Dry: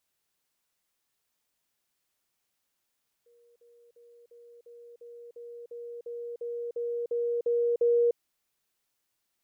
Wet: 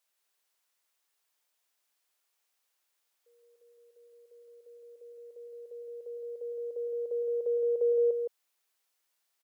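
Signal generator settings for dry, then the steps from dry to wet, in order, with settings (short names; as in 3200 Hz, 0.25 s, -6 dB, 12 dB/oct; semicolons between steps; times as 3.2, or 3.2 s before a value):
level ladder 474 Hz -59 dBFS, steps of 3 dB, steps 14, 0.30 s 0.05 s
HPF 490 Hz 12 dB/oct; echo 0.165 s -5.5 dB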